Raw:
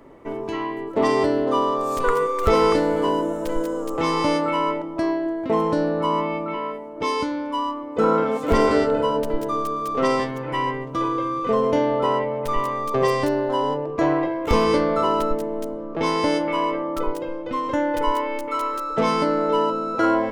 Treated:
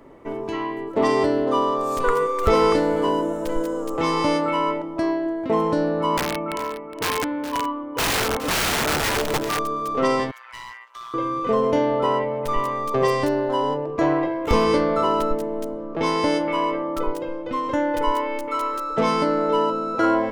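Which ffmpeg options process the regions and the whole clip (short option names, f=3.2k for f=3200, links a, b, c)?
-filter_complex "[0:a]asettb=1/sr,asplit=3[a][b][c];[a]atrim=end=6.174[d];[b]atrim=start=6.17:end=9.59,asetpts=PTS-STARTPTS,afade=t=in:d=0.004:c=qsin,afade=t=out:st=3.416:d=0.004:c=qsin,lowpass=f=2.8k:w=0.5412,lowpass=f=2.8k:w=1.3066,aeval=exprs='(mod(7.08*val(0)+1,2)-1)/7.08':c=same,aecho=1:1:415:0.224,atrim=end_sample=150822[e];[c]atrim=start=9.586[f];[d][e]acrossfade=d=0.004:c1=hsin:c2=qsin[g];[g][f]acrossfade=d=0.004:c1=qsin:c2=hsin,asettb=1/sr,asplit=3[h][i][j];[h]atrim=end=10.314[k];[i]atrim=start=10.31:end=11.14,asetpts=PTS-STARTPTS,afade=t=in:d=0.004:c=qsin,afade=t=out:st=0.826:d=0.004:c=qsin,highpass=f=1.2k:w=0.5412,highpass=f=1.2k:w=1.3066,asoftclip=type=hard:threshold=-32dB,tremolo=f=120:d=0.75[l];[j]atrim=start=11.136[m];[k][l]acrossfade=d=0.004:c1=hsin:c2=qsin[n];[n][m]acrossfade=d=0.004:c1=qsin:c2=hsin"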